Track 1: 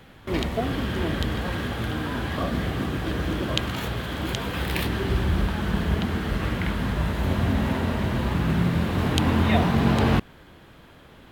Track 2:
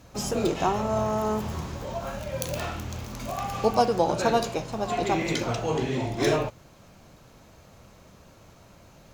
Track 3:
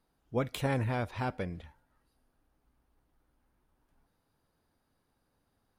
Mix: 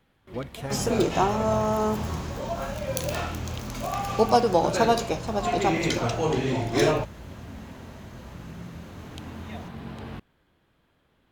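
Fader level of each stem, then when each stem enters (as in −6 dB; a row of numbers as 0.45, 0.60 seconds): −18.0, +2.0, −3.0 decibels; 0.00, 0.55, 0.00 seconds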